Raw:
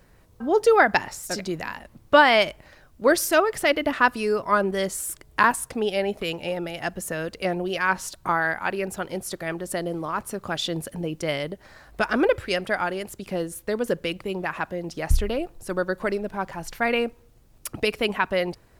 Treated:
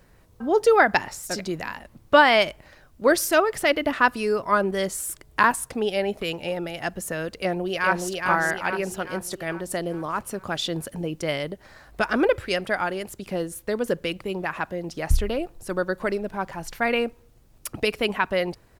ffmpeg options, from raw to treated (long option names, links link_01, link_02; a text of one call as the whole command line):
ffmpeg -i in.wav -filter_complex "[0:a]asplit=2[link_01][link_02];[link_02]afade=type=in:start_time=7.39:duration=0.01,afade=type=out:start_time=8.08:duration=0.01,aecho=0:1:420|840|1260|1680|2100|2520|2940:0.707946|0.353973|0.176986|0.0884932|0.0442466|0.0221233|0.0110617[link_03];[link_01][link_03]amix=inputs=2:normalize=0" out.wav